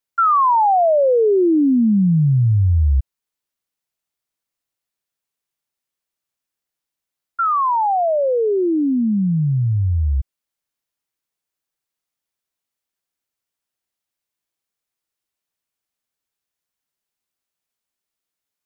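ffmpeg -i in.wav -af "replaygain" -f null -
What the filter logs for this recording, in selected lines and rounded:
track_gain = -0.3 dB
track_peak = 0.196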